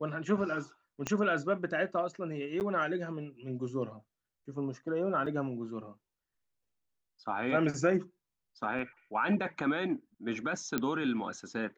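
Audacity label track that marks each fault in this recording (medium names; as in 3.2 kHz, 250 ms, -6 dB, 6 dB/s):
1.070000	1.070000	pop -18 dBFS
2.600000	2.610000	dropout 9.1 ms
5.260000	5.260000	dropout 4.8 ms
8.790000	8.790000	dropout 2.8 ms
10.780000	10.780000	pop -16 dBFS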